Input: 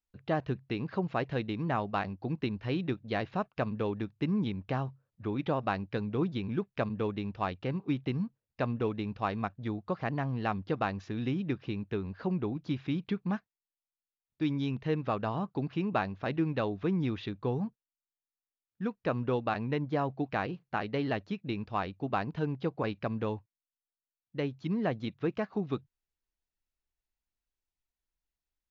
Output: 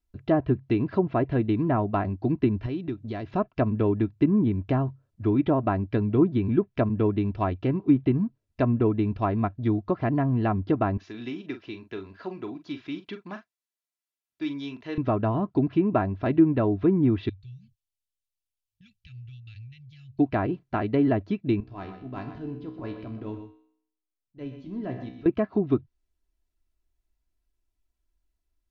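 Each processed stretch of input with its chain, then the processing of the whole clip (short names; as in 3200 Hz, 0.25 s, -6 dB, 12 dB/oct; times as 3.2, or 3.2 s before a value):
2.66–3.34 HPF 47 Hz + compressor 2.5:1, threshold -41 dBFS
10.97–14.98 HPF 1300 Hz 6 dB/oct + doubler 42 ms -10 dB
17.29–20.19 elliptic band-stop 110–2700 Hz, stop band 50 dB + compressor 2:1, threshold -59 dBFS
21.6–25.26 transient shaper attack -11 dB, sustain -1 dB + resonator 63 Hz, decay 0.64 s, mix 80% + echo 0.123 s -10 dB
whole clip: treble ducked by the level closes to 1600 Hz, closed at -26.5 dBFS; low shelf 450 Hz +12 dB; comb 3 ms, depth 55%; gain +1 dB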